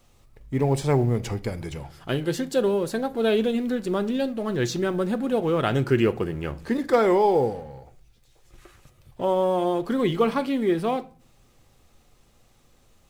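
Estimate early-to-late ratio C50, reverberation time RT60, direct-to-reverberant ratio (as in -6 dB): 19.5 dB, 0.40 s, 11.0 dB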